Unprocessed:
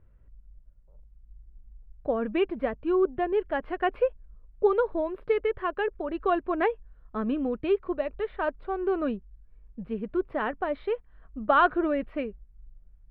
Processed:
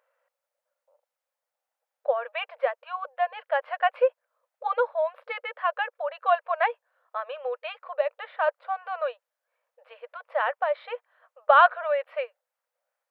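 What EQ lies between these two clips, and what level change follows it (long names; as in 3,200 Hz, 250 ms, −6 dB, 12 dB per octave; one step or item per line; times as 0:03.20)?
linear-phase brick-wall high-pass 480 Hz
+4.5 dB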